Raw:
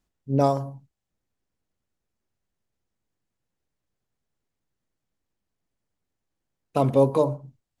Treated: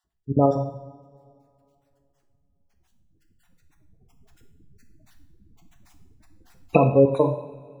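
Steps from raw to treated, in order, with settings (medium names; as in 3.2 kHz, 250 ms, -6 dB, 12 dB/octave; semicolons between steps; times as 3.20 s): random holes in the spectrogram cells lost 26%; recorder AGC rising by 7.4 dB/s; spectral gate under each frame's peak -20 dB strong; two-slope reverb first 0.7 s, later 2.7 s, from -19 dB, DRR 4 dB; trim +2 dB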